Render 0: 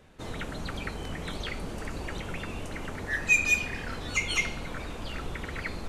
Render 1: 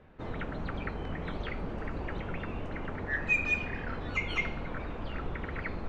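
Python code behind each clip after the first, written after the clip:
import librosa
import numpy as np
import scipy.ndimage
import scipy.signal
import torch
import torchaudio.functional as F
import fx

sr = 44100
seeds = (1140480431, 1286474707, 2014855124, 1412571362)

y = scipy.signal.sosfilt(scipy.signal.butter(2, 2000.0, 'lowpass', fs=sr, output='sos'), x)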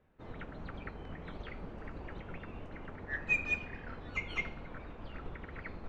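y = fx.upward_expand(x, sr, threshold_db=-45.0, expansion=1.5)
y = y * librosa.db_to_amplitude(-2.5)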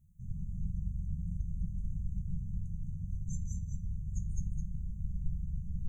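y = fx.brickwall_bandstop(x, sr, low_hz=200.0, high_hz=6000.0)
y = y + 10.0 ** (-7.0 / 20.0) * np.pad(y, (int(211 * sr / 1000.0), 0))[:len(y)]
y = y * librosa.db_to_amplitude(9.5)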